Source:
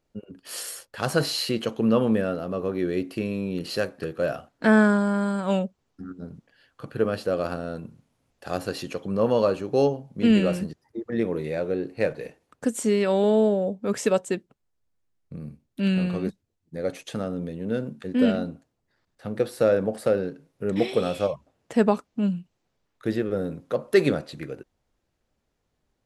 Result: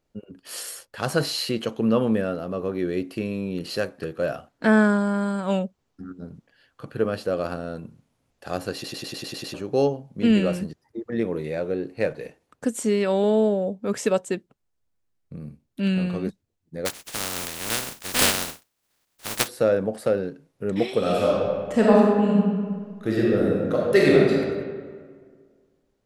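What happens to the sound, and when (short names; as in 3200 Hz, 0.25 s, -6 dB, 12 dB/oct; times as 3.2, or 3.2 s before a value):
8.74 stutter in place 0.10 s, 8 plays
16.85–19.47 spectral contrast lowered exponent 0.17
20.98–24.31 reverb throw, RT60 1.8 s, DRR -4.5 dB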